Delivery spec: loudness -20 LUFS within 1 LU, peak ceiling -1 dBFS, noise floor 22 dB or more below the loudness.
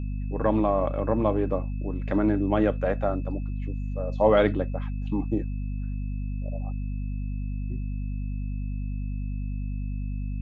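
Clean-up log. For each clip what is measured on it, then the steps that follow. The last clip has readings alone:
hum 50 Hz; harmonics up to 250 Hz; hum level -27 dBFS; steady tone 2600 Hz; tone level -57 dBFS; loudness -28.0 LUFS; peak -8.0 dBFS; loudness target -20.0 LUFS
-> de-hum 50 Hz, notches 5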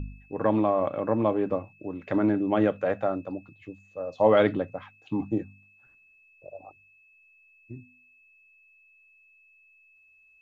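hum none; steady tone 2600 Hz; tone level -57 dBFS
-> notch 2600 Hz, Q 30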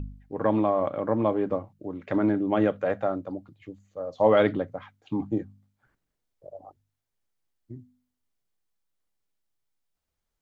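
steady tone none; loudness -26.0 LUFS; peak -8.5 dBFS; loudness target -20.0 LUFS
-> gain +6 dB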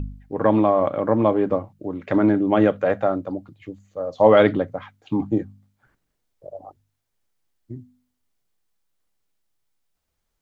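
loudness -20.0 LUFS; peak -2.5 dBFS; noise floor -76 dBFS

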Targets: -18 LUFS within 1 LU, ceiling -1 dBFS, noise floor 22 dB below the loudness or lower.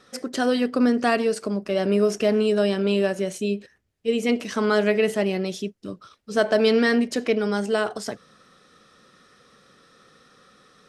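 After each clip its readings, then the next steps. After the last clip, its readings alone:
loudness -23.0 LUFS; peak -7.5 dBFS; loudness target -18.0 LUFS
-> gain +5 dB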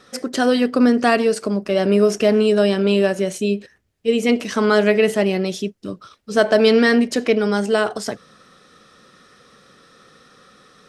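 loudness -18.0 LUFS; peak -2.5 dBFS; noise floor -55 dBFS

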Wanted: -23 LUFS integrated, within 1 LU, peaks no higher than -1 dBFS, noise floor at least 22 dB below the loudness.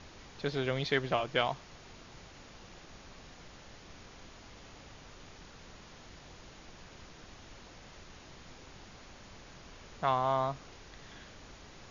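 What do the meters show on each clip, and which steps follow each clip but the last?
noise floor -54 dBFS; noise floor target -55 dBFS; loudness -32.5 LUFS; peak -13.5 dBFS; loudness target -23.0 LUFS
-> noise print and reduce 6 dB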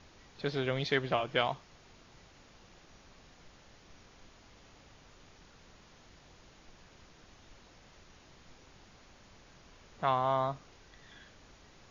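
noise floor -60 dBFS; loudness -33.0 LUFS; peak -13.5 dBFS; loudness target -23.0 LUFS
-> gain +10 dB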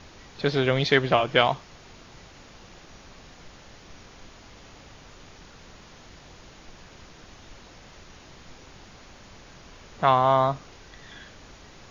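loudness -23.0 LUFS; peak -3.5 dBFS; noise floor -50 dBFS

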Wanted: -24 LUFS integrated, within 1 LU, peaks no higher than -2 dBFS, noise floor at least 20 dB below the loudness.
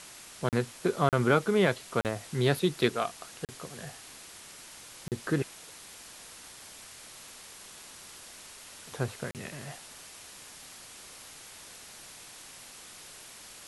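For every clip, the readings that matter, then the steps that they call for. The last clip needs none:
dropouts 6; longest dropout 38 ms; noise floor -49 dBFS; noise floor target -51 dBFS; loudness -30.5 LUFS; peak -9.5 dBFS; loudness target -24.0 LUFS
-> interpolate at 0.49/1.09/2.01/3.45/5.08/9.31, 38 ms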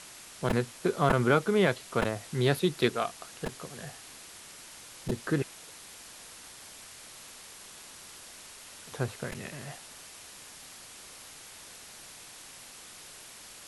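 dropouts 0; noise floor -49 dBFS; noise floor target -50 dBFS
-> noise print and reduce 6 dB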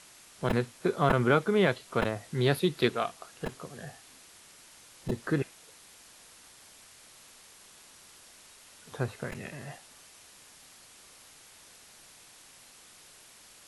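noise floor -55 dBFS; loudness -30.0 LUFS; peak -9.5 dBFS; loudness target -24.0 LUFS
-> gain +6 dB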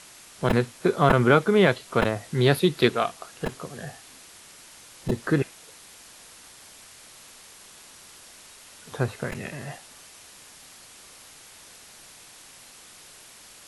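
loudness -24.0 LUFS; peak -3.5 dBFS; noise floor -49 dBFS

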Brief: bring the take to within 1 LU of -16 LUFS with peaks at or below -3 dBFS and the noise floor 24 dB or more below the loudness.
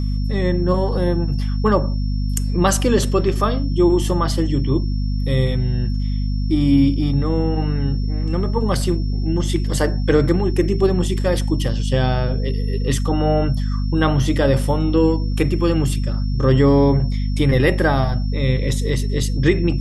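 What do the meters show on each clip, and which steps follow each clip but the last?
hum 50 Hz; harmonics up to 250 Hz; hum level -18 dBFS; steady tone 5400 Hz; tone level -41 dBFS; loudness -19.0 LUFS; peak -2.5 dBFS; loudness target -16.0 LUFS
-> notches 50/100/150/200/250 Hz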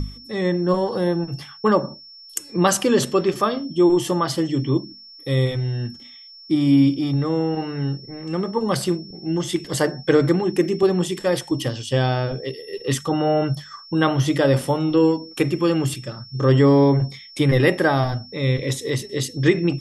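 hum none; steady tone 5400 Hz; tone level -41 dBFS
-> notch 5400 Hz, Q 30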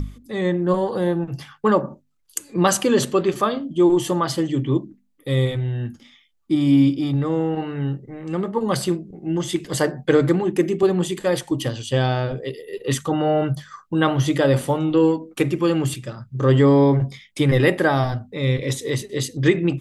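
steady tone none; loudness -21.0 LUFS; peak -3.5 dBFS; loudness target -16.0 LUFS
-> gain +5 dB; limiter -3 dBFS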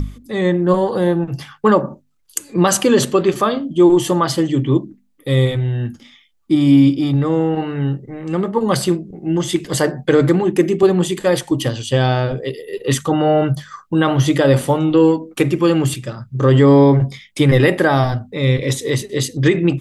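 loudness -16.5 LUFS; peak -3.0 dBFS; noise floor -54 dBFS

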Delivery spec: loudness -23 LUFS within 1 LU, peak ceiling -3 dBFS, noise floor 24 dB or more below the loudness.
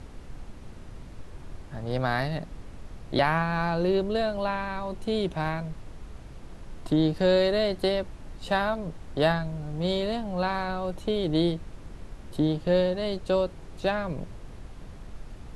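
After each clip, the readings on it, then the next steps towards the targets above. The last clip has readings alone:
noise floor -44 dBFS; noise floor target -52 dBFS; loudness -27.5 LUFS; peak -10.0 dBFS; loudness target -23.0 LUFS
-> noise print and reduce 8 dB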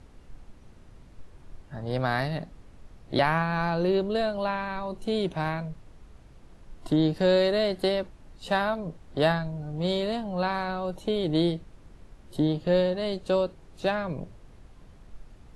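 noise floor -52 dBFS; loudness -27.5 LUFS; peak -10.0 dBFS; loudness target -23.0 LUFS
-> gain +4.5 dB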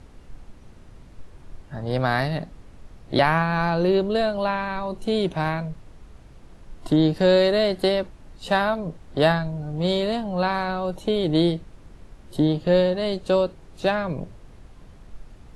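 loudness -23.0 LUFS; peak -5.5 dBFS; noise floor -48 dBFS

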